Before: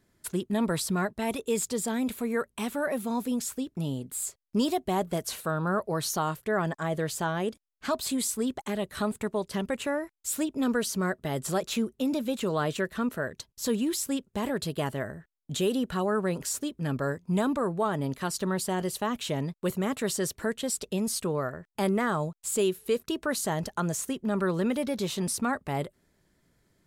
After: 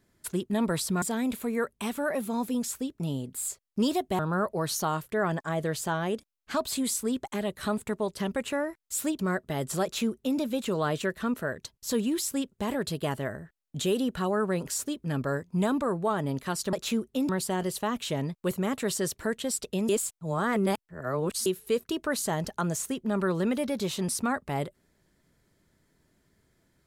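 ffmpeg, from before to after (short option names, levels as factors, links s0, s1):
-filter_complex "[0:a]asplit=8[s0][s1][s2][s3][s4][s5][s6][s7];[s0]atrim=end=1.022[s8];[s1]atrim=start=1.788:end=4.962[s9];[s2]atrim=start=5.528:end=10.532[s10];[s3]atrim=start=10.938:end=18.482[s11];[s4]atrim=start=11.578:end=12.142[s12];[s5]atrim=start=18.478:end=21.082[s13];[s6]atrim=start=21.078:end=22.652,asetpts=PTS-STARTPTS,areverse[s14];[s7]atrim=start=22.648[s15];[s8][s9]acrossfade=d=0.004:c1=hsin:c2=hsin[s16];[s16][s10]acrossfade=d=0.004:c1=hsin:c2=hsin[s17];[s17][s11]acrossfade=d=0.004:c1=hsin:c2=hsin[s18];[s18][s12]acrossfade=d=0.004:c1=hsin:c2=hsin[s19];[s19][s13]acrossfade=d=0.004:c1=hsin:c2=hsin[s20];[s20][s14]acrossfade=d=0.004:c1=hsin:c2=hsin[s21];[s21][s15]acrossfade=d=0.004:c1=hsin:c2=hsin"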